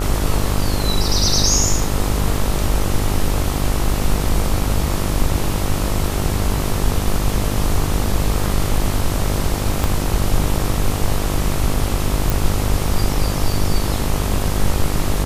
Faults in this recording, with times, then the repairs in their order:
buzz 50 Hz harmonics 27 -22 dBFS
9.84 pop
12.3 pop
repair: de-click; de-hum 50 Hz, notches 27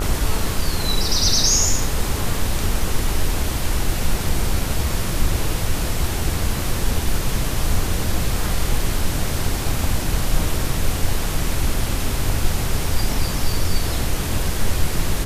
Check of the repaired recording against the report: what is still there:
9.84 pop

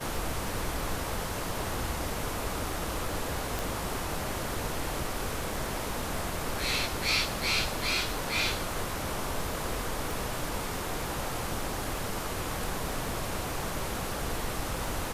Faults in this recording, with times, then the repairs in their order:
crackle 37/s -39 dBFS
3.59 pop
10.11 pop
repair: de-click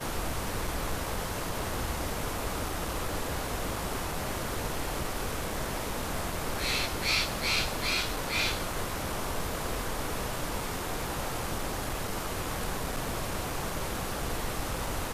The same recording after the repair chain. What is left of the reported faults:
none

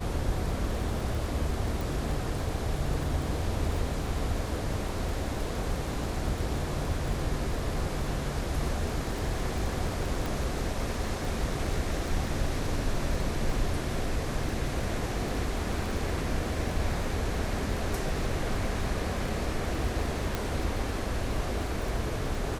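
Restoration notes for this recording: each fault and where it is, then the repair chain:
crackle 24/s -33 dBFS
1.81 pop
10.26 pop
20.35 pop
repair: de-click

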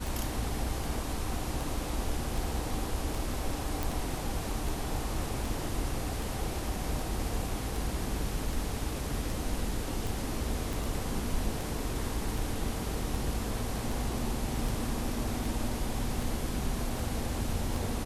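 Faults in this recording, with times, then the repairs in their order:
tick 78 rpm
3.83 pop
10.73 pop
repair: de-click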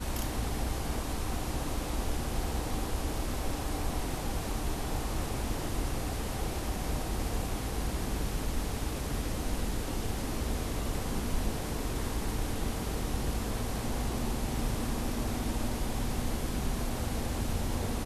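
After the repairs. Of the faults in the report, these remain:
10.73 pop

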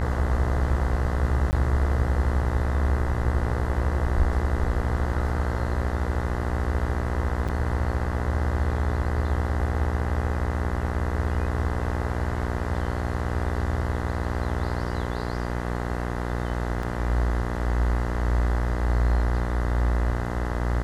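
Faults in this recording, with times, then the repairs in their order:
buzz 60 Hz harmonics 34 -29 dBFS
1.51–1.53 gap 19 ms
7.48–7.49 gap 6.4 ms
16.83 gap 3 ms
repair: de-hum 60 Hz, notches 34; interpolate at 1.51, 19 ms; interpolate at 7.48, 6.4 ms; interpolate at 16.83, 3 ms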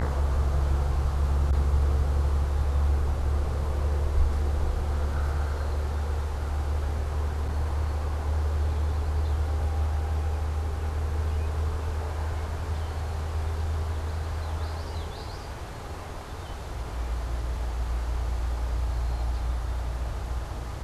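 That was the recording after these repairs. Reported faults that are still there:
none

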